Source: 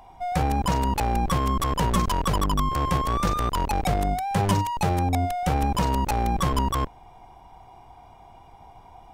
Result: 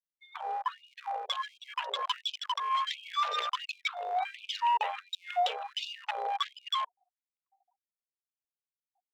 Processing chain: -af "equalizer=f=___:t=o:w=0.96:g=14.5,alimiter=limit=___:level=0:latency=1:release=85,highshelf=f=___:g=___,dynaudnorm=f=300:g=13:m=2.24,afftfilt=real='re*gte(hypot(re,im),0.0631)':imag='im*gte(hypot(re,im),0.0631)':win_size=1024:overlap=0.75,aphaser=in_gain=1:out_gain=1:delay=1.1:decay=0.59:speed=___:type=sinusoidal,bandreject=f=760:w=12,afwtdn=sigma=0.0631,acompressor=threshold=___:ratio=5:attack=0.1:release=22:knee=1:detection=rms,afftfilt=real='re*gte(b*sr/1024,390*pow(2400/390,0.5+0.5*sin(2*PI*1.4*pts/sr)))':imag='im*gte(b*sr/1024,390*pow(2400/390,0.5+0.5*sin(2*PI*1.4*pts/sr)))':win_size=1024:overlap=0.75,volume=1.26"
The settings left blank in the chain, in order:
3400, 0.266, 6300, -5.5, 0.94, 0.0501